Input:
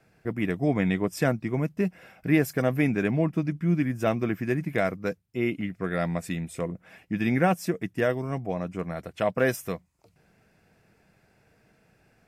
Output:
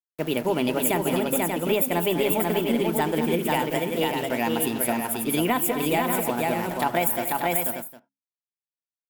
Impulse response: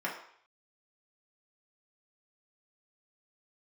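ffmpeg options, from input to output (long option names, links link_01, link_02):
-filter_complex "[0:a]aexciter=amount=4.6:drive=8.9:freq=6200,aeval=exprs='val(0)*gte(abs(val(0)),0.0119)':channel_layout=same,bandreject=frequency=50:width_type=h:width=6,bandreject=frequency=100:width_type=h:width=6,bandreject=frequency=150:width_type=h:width=6,bandreject=frequency=200:width_type=h:width=6,asetrate=59535,aresample=44100,asplit=2[link_01][link_02];[1:a]atrim=start_sample=2205,atrim=end_sample=4410[link_03];[link_02][link_03]afir=irnorm=-1:irlink=0,volume=-18dB[link_04];[link_01][link_04]amix=inputs=2:normalize=0,aeval=exprs='0.531*(cos(1*acos(clip(val(0)/0.531,-1,1)))-cos(1*PI/2))+0.00841*(cos(4*acos(clip(val(0)/0.531,-1,1)))-cos(4*PI/2))':channel_layout=same,asplit=2[link_05][link_06];[link_06]aecho=0:1:184|204|281|489|587|759:0.133|0.237|0.133|0.631|0.398|0.106[link_07];[link_05][link_07]amix=inputs=2:normalize=0,acompressor=threshold=-22dB:ratio=4,volume=2.5dB"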